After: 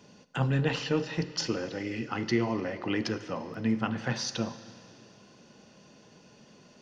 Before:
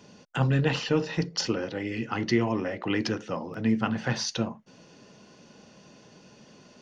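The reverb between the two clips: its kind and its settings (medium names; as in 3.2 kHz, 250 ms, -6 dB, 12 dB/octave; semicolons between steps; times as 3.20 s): Schroeder reverb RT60 2.5 s, combs from 33 ms, DRR 12.5 dB; trim -3 dB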